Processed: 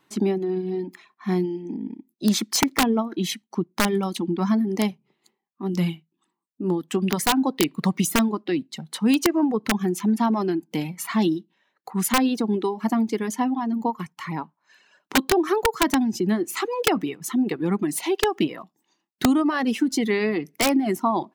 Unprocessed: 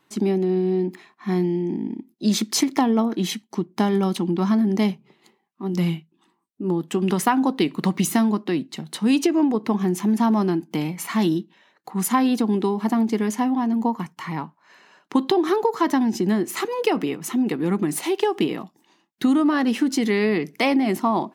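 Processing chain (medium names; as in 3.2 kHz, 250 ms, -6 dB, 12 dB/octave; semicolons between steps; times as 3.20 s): reverb removal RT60 1.4 s; integer overflow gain 10.5 dB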